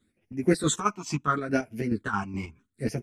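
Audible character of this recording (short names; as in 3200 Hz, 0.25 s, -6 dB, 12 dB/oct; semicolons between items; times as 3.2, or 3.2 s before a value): phasing stages 8, 0.74 Hz, lowest notch 490–1200 Hz; chopped level 4.7 Hz, depth 60%, duty 50%; a shimmering, thickened sound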